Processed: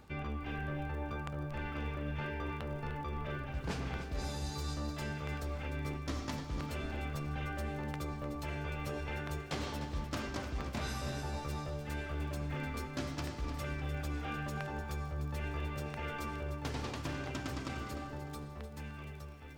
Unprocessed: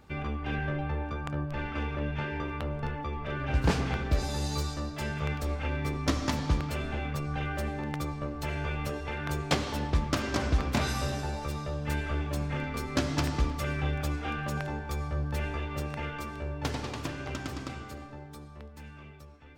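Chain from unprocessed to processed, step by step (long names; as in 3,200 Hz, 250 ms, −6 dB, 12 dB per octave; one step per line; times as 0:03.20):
reversed playback
downward compressor, threshold −37 dBFS, peak gain reduction 16.5 dB
reversed playback
surface crackle 24 per second −49 dBFS
feedback echo at a low word length 301 ms, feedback 35%, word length 11 bits, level −10.5 dB
level +1 dB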